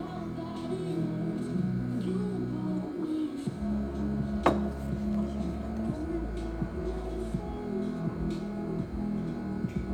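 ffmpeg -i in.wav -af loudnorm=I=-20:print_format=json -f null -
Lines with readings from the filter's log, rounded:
"input_i" : "-33.3",
"input_tp" : "-8.6",
"input_lra" : "2.5",
"input_thresh" : "-43.3",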